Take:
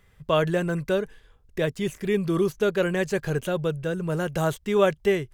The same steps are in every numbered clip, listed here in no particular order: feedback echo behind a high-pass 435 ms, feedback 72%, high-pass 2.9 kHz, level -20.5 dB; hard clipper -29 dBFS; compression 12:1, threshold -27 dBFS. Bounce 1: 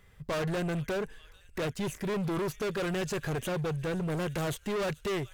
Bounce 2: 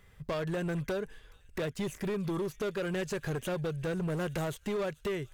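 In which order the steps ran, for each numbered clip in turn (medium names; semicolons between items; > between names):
feedback echo behind a high-pass > hard clipper > compression; compression > feedback echo behind a high-pass > hard clipper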